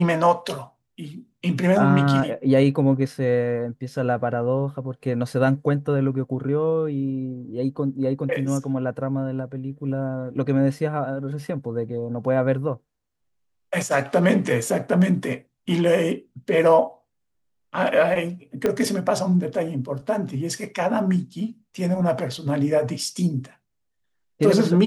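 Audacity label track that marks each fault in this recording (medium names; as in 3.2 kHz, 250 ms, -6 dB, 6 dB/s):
18.660000	18.660000	pop -10 dBFS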